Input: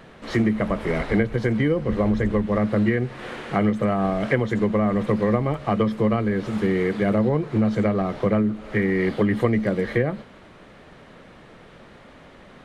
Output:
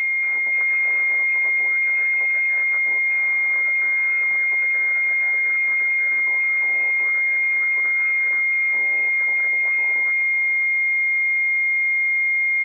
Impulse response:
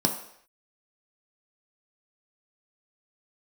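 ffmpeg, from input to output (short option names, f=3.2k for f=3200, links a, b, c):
-af "highpass=73,afftfilt=real='re*lt(hypot(re,im),0.141)':imag='im*lt(hypot(re,im),0.141)':win_size=1024:overlap=0.75,acompressor=threshold=-37dB:ratio=8,aeval=exprs='val(0)+0.126*sin(2*PI*470*n/s)':c=same,aecho=1:1:538|1076|1614|2152:0.316|0.123|0.0481|0.0188,lowpass=f=2.2k:t=q:w=0.5098,lowpass=f=2.2k:t=q:w=0.6013,lowpass=f=2.2k:t=q:w=0.9,lowpass=f=2.2k:t=q:w=2.563,afreqshift=-2600"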